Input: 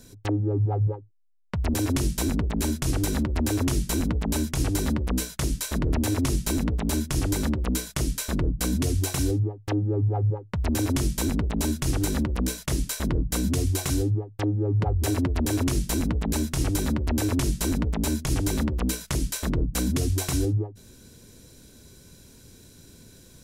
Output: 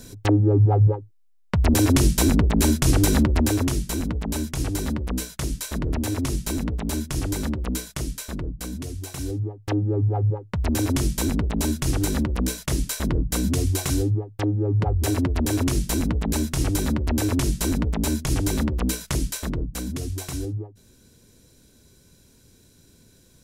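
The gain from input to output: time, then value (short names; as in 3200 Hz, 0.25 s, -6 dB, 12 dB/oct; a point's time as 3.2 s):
3.27 s +7 dB
3.84 s -1 dB
7.77 s -1 dB
9 s -9 dB
9.71 s +2 dB
19.18 s +2 dB
19.82 s -5 dB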